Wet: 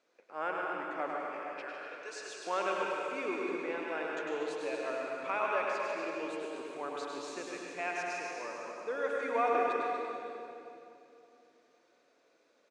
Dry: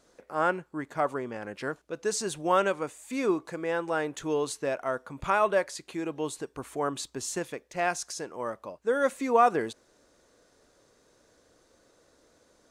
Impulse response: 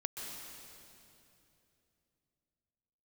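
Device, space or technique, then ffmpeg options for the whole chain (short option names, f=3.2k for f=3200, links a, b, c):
station announcement: -filter_complex "[0:a]asettb=1/sr,asplit=3[a][b][c];[a]atrim=end=1.114[d];[b]atrim=start=1.11:end=2.47,asetpts=PTS-STARTPTS,afade=t=in:d=0.004:c=qsin,afade=t=out:st=1.356:d=0.004:c=qsin,highpass=670[e];[c]atrim=start=2.466[f];[d][e]acrossfade=d=0.004:c1=hsin:c2=qsin[g];[g][f]acrossfade=d=0.004:c1=qsin:c2=hsin,highpass=330,lowpass=4.8k,equalizer=f=2.4k:t=o:w=0.32:g=10,aecho=1:1:102|151.6|239.1:0.562|0.316|0.282[h];[1:a]atrim=start_sample=2205[i];[h][i]afir=irnorm=-1:irlink=0,volume=-8dB"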